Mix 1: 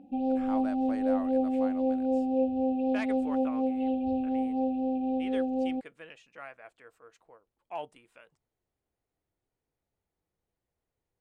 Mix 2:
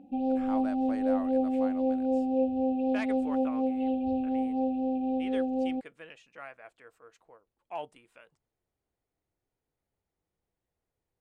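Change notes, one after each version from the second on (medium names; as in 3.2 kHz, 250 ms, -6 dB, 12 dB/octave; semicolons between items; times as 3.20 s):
no change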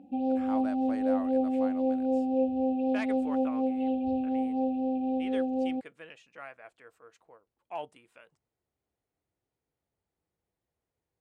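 master: add high-pass 53 Hz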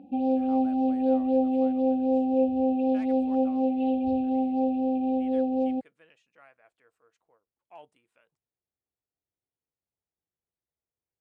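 speech -11.0 dB; background +3.5 dB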